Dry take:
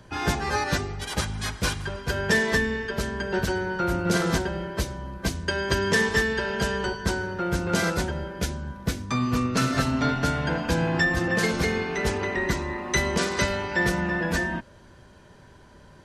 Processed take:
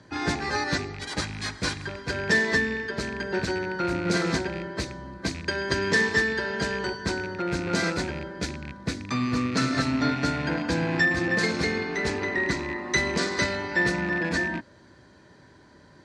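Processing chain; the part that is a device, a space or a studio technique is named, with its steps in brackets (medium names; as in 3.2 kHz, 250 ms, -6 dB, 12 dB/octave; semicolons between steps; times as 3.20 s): car door speaker with a rattle (rattle on loud lows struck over -30 dBFS, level -25 dBFS; cabinet simulation 81–8700 Hz, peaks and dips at 300 Hz +8 dB, 1.9 kHz +6 dB, 2.9 kHz -5 dB, 4.3 kHz +7 dB); trim -3 dB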